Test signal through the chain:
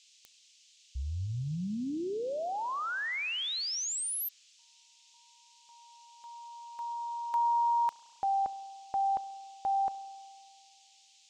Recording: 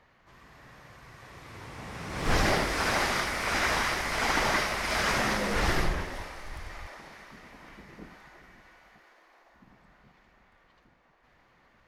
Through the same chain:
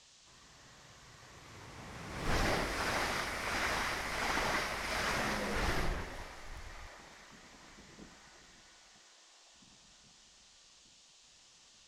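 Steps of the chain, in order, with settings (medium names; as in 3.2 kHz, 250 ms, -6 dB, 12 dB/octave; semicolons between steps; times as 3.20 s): band noise 2.6–7.4 kHz -55 dBFS; spring tank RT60 2 s, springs 33 ms, chirp 60 ms, DRR 17 dB; trim -7.5 dB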